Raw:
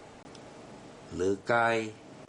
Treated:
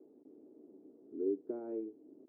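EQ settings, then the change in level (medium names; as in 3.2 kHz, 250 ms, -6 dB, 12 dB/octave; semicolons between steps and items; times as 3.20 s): Butterworth band-pass 330 Hz, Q 2.2; -3.0 dB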